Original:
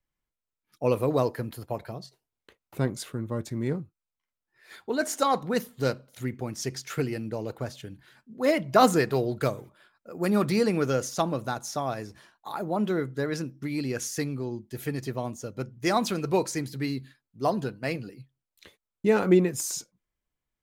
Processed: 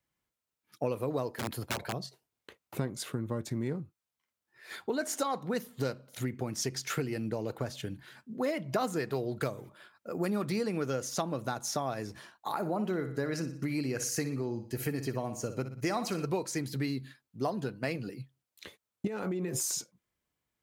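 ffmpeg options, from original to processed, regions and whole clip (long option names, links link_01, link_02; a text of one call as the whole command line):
ffmpeg -i in.wav -filter_complex "[0:a]asettb=1/sr,asplit=3[link_01][link_02][link_03];[link_01]atrim=end=1.304[link_04];[link_02]atrim=start=1.3:end=1.93,asetpts=PTS-STARTPTS,afade=type=in:duration=0.004:curve=qsin,afade=type=out:start_time=0.626:duration=0.004:curve=qsin,aeval=exprs='(mod(23.7*val(0)+1,2)-1)/23.7':channel_layout=same,equalizer=frequency=14000:width_type=o:width=0.39:gain=-2[link_05];[link_03]atrim=start=1.926[link_06];[link_04][link_05]acrossfade=duration=0.004:curve1=hsin:curve2=qsin[link_07];[link_07][link_06]acrossfade=duration=0.004:curve1=qsin:curve2=hsin,asettb=1/sr,asplit=3[link_08][link_09][link_10];[link_08]atrim=end=12.514[link_11];[link_09]atrim=start=12.51:end=16.26,asetpts=PTS-STARTPTS,afade=type=in:duration=0.004:curve=qsin,afade=type=out:start_time=3.746:duration=0.004:curve=qsin,bandreject=frequency=3500:width=5.6,aecho=1:1:60|120|180|240:0.266|0.0958|0.0345|0.0124,atrim=end_sample=165375[link_12];[link_10]atrim=start=16.256[link_13];[link_11][link_12]acrossfade=duration=0.004:curve1=hsin:curve2=qsin[link_14];[link_14][link_13]acrossfade=duration=0.004:curve1=qsin:curve2=hsin,asettb=1/sr,asplit=3[link_15][link_16][link_17];[link_15]atrim=end=19.074[link_18];[link_16]atrim=start=19.07:end=19.61,asetpts=PTS-STARTPTS,afade=type=in:duration=0.004:curve=qsin,afade=type=out:start_time=0.536:duration=0.004:curve=qsin,bandreject=frequency=75.86:width_type=h:width=4,bandreject=frequency=151.72:width_type=h:width=4,bandreject=frequency=227.58:width_type=h:width=4,bandreject=frequency=303.44:width_type=h:width=4,bandreject=frequency=379.3:width_type=h:width=4,bandreject=frequency=455.16:width_type=h:width=4,bandreject=frequency=531.02:width_type=h:width=4,bandreject=frequency=606.88:width_type=h:width=4,bandreject=frequency=682.74:width_type=h:width=4,bandreject=frequency=758.6:width_type=h:width=4,bandreject=frequency=834.46:width_type=h:width=4,bandreject=frequency=910.32:width_type=h:width=4,bandreject=frequency=986.18:width_type=h:width=4,bandreject=frequency=1062.04:width_type=h:width=4,acompressor=threshold=-30dB:ratio=12:attack=3.2:release=140:knee=1:detection=peak[link_19];[link_17]atrim=start=19.606[link_20];[link_18][link_19]acrossfade=duration=0.004:curve1=hsin:curve2=qsin[link_21];[link_21][link_20]acrossfade=duration=0.004:curve1=qsin:curve2=hsin,acompressor=threshold=-34dB:ratio=5,highpass=78,volume=4dB" out.wav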